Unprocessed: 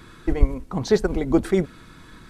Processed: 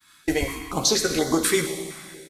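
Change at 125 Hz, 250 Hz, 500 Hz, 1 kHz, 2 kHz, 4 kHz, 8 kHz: -7.0 dB, -2.5 dB, -2.5 dB, +4.0 dB, +7.5 dB, +13.5 dB, +18.0 dB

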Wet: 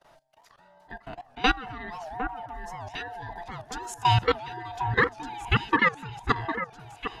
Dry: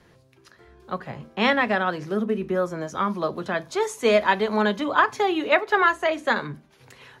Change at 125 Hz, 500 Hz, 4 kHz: +5.5 dB, -11.0 dB, -1.5 dB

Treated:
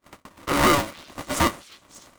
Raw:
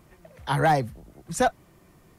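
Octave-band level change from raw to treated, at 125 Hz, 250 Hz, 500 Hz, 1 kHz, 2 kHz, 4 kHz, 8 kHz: -2.5 dB, +5.5 dB, +0.5 dB, +0.5 dB, +4.0 dB, +10.0 dB, +7.0 dB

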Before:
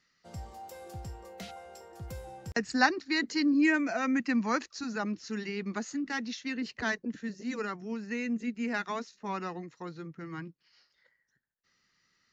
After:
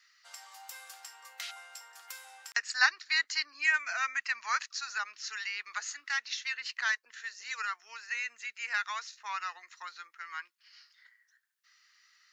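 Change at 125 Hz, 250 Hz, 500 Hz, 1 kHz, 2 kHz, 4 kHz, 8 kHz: under -40 dB, under -40 dB, -22.0 dB, -2.0 dB, +3.5 dB, +4.0 dB, no reading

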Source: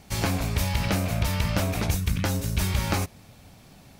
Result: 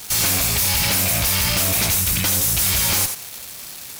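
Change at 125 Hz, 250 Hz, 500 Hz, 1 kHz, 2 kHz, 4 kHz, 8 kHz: -1.0 dB, -1.0 dB, +1.5 dB, +3.5 dB, +8.5 dB, +13.0 dB, +17.5 dB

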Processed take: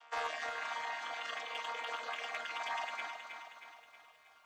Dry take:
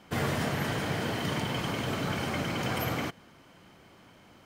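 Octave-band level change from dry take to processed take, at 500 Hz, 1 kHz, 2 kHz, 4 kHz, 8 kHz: -12.0 dB, -3.5 dB, -4.5 dB, -7.5 dB, -11.5 dB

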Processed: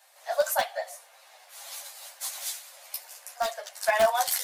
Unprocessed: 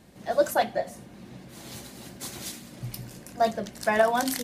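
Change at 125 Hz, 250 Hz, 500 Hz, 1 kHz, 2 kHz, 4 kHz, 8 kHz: under -20 dB, -20.0 dB, -2.5 dB, -1.0 dB, -0.5 dB, +2.0 dB, +4.0 dB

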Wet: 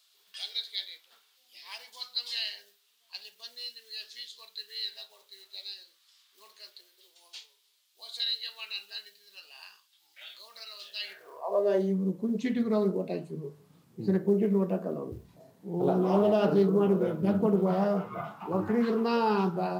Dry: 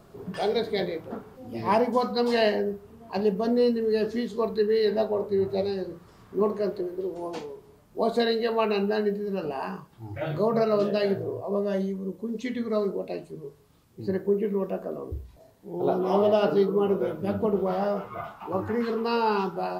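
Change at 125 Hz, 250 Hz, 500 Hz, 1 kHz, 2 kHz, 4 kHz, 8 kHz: +0.5 dB, -1.5 dB, -6.0 dB, -6.0 dB, -6.5 dB, +3.0 dB, no reading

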